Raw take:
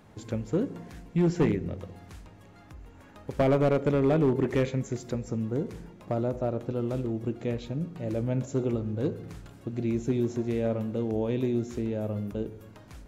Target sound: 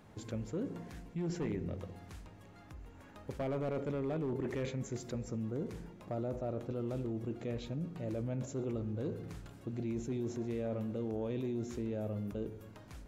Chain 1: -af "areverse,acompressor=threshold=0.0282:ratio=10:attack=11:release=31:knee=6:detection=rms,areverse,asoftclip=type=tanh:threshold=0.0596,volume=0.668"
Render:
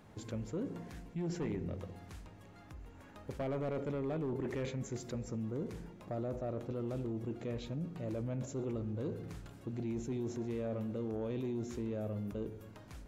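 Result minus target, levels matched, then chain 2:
saturation: distortion +14 dB
-af "areverse,acompressor=threshold=0.0282:ratio=10:attack=11:release=31:knee=6:detection=rms,areverse,asoftclip=type=tanh:threshold=0.15,volume=0.668"

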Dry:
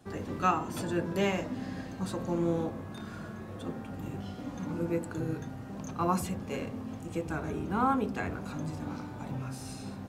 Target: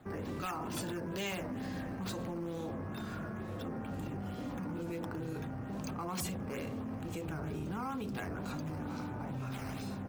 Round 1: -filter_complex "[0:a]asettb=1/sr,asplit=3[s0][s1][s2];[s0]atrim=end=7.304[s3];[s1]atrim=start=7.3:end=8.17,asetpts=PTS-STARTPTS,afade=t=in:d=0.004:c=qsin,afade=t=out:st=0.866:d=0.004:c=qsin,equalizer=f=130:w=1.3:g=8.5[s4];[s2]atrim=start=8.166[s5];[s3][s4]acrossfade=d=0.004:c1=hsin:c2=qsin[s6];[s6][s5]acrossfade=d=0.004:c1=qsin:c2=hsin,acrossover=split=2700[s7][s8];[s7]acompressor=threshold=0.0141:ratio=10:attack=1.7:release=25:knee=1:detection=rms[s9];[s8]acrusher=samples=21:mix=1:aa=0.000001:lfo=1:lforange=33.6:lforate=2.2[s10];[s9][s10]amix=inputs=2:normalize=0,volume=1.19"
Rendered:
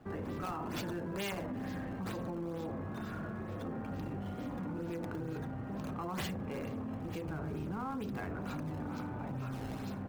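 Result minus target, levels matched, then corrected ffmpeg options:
decimation with a swept rate: distortion +14 dB
-filter_complex "[0:a]asettb=1/sr,asplit=3[s0][s1][s2];[s0]atrim=end=7.304[s3];[s1]atrim=start=7.3:end=8.17,asetpts=PTS-STARTPTS,afade=t=in:d=0.004:c=qsin,afade=t=out:st=0.866:d=0.004:c=qsin,equalizer=f=130:w=1.3:g=8.5[s4];[s2]atrim=start=8.166[s5];[s3][s4]acrossfade=d=0.004:c1=hsin:c2=qsin[s6];[s6][s5]acrossfade=d=0.004:c1=qsin:c2=hsin,acrossover=split=2700[s7][s8];[s7]acompressor=threshold=0.0141:ratio=10:attack=1.7:release=25:knee=1:detection=rms[s9];[s8]acrusher=samples=7:mix=1:aa=0.000001:lfo=1:lforange=11.2:lforate=2.2[s10];[s9][s10]amix=inputs=2:normalize=0,volume=1.19"

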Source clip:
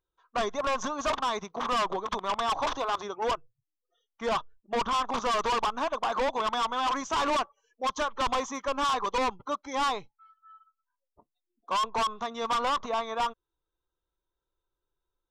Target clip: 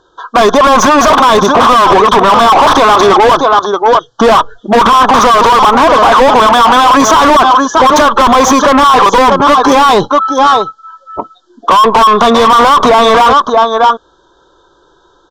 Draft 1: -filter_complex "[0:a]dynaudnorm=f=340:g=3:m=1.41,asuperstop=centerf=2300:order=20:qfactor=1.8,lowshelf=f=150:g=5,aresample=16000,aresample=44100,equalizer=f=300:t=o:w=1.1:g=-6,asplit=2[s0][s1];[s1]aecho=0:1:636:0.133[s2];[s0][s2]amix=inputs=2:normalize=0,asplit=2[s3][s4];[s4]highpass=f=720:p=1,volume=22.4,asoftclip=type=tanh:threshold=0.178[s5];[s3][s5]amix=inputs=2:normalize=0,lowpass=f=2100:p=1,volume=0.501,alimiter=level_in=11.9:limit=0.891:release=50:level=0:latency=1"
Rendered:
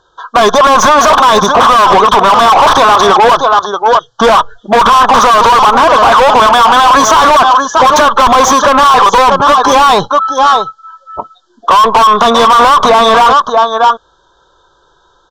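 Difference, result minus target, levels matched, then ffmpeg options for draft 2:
250 Hz band -5.0 dB
-filter_complex "[0:a]dynaudnorm=f=340:g=3:m=1.41,asuperstop=centerf=2300:order=20:qfactor=1.8,lowshelf=f=150:g=5,aresample=16000,aresample=44100,equalizer=f=300:t=o:w=1.1:g=4,asplit=2[s0][s1];[s1]aecho=0:1:636:0.133[s2];[s0][s2]amix=inputs=2:normalize=0,asplit=2[s3][s4];[s4]highpass=f=720:p=1,volume=22.4,asoftclip=type=tanh:threshold=0.178[s5];[s3][s5]amix=inputs=2:normalize=0,lowpass=f=2100:p=1,volume=0.501,alimiter=level_in=11.9:limit=0.891:release=50:level=0:latency=1"

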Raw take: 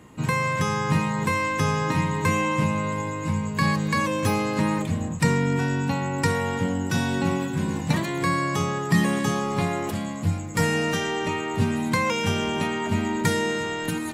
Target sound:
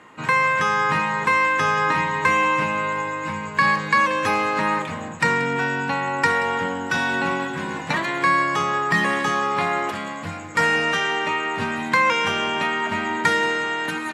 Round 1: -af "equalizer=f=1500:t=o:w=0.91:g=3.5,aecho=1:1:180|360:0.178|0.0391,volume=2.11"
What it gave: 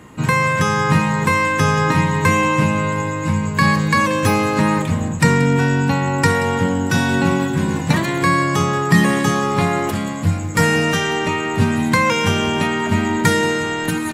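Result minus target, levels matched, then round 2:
2 kHz band -3.5 dB
-af "bandpass=f=1500:t=q:w=0.58:csg=0,equalizer=f=1500:t=o:w=0.91:g=3.5,aecho=1:1:180|360:0.178|0.0391,volume=2.11"

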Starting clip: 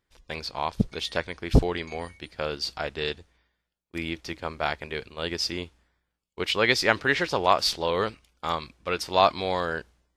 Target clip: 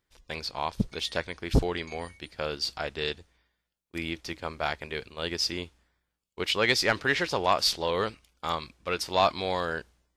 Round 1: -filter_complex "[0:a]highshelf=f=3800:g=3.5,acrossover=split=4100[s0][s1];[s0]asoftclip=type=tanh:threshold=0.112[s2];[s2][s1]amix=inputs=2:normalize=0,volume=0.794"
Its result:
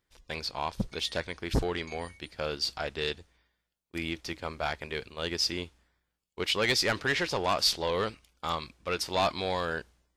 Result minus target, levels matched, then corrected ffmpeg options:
saturation: distortion +9 dB
-filter_complex "[0:a]highshelf=f=3800:g=3.5,acrossover=split=4100[s0][s1];[s0]asoftclip=type=tanh:threshold=0.316[s2];[s2][s1]amix=inputs=2:normalize=0,volume=0.794"

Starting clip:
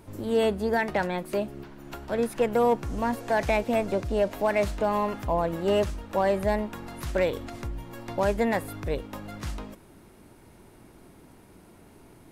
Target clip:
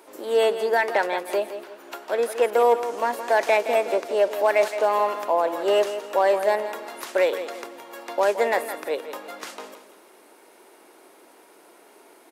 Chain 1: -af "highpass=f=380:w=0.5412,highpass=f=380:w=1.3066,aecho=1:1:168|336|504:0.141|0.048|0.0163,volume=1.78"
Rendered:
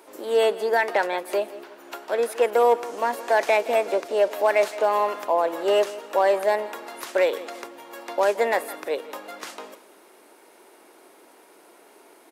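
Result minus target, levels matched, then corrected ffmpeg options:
echo-to-direct -6 dB
-af "highpass=f=380:w=0.5412,highpass=f=380:w=1.3066,aecho=1:1:168|336|504|672:0.282|0.0958|0.0326|0.0111,volume=1.78"

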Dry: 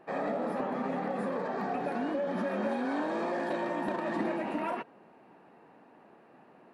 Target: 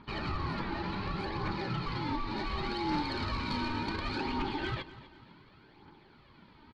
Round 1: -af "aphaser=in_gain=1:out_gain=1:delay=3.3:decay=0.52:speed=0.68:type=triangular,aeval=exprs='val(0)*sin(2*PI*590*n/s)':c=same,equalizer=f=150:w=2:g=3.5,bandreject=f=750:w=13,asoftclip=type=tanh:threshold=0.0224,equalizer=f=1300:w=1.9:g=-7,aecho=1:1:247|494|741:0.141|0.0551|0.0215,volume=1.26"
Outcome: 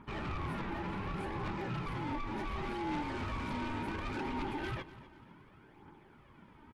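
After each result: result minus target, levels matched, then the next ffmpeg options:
4 kHz band -6.0 dB; saturation: distortion +9 dB
-af "aphaser=in_gain=1:out_gain=1:delay=3.3:decay=0.52:speed=0.68:type=triangular,aeval=exprs='val(0)*sin(2*PI*590*n/s)':c=same,lowpass=f=4300:t=q:w=9.2,equalizer=f=150:w=2:g=3.5,bandreject=f=750:w=13,asoftclip=type=tanh:threshold=0.0224,equalizer=f=1300:w=1.9:g=-7,aecho=1:1:247|494|741:0.141|0.0551|0.0215,volume=1.26"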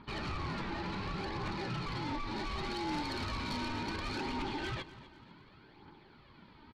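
saturation: distortion +9 dB
-af "aphaser=in_gain=1:out_gain=1:delay=3.3:decay=0.52:speed=0.68:type=triangular,aeval=exprs='val(0)*sin(2*PI*590*n/s)':c=same,lowpass=f=4300:t=q:w=9.2,equalizer=f=150:w=2:g=3.5,bandreject=f=750:w=13,asoftclip=type=tanh:threshold=0.0596,equalizer=f=1300:w=1.9:g=-7,aecho=1:1:247|494|741:0.141|0.0551|0.0215,volume=1.26"

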